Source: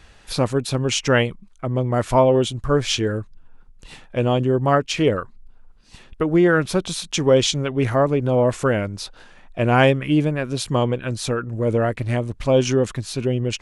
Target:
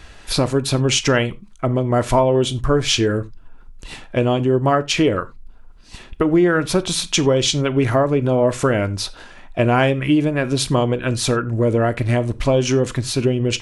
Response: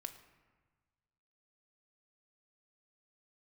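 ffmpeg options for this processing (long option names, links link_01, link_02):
-filter_complex "[0:a]acompressor=threshold=-20dB:ratio=4,asplit=2[link_01][link_02];[1:a]atrim=start_sample=2205,atrim=end_sample=4410[link_03];[link_02][link_03]afir=irnorm=-1:irlink=0,volume=7.5dB[link_04];[link_01][link_04]amix=inputs=2:normalize=0,volume=-1dB"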